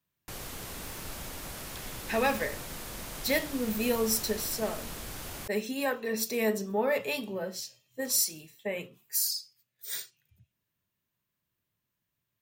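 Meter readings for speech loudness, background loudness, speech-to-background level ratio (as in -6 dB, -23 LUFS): -31.0 LUFS, -40.0 LUFS, 9.0 dB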